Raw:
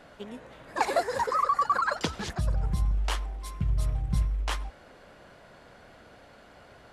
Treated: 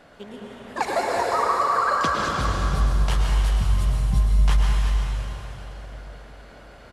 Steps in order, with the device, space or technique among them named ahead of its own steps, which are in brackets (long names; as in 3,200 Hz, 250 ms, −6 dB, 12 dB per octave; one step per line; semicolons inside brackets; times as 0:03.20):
cave (single-tap delay 362 ms −10 dB; convolution reverb RT60 3.6 s, pre-delay 100 ms, DRR −2 dB)
level +1 dB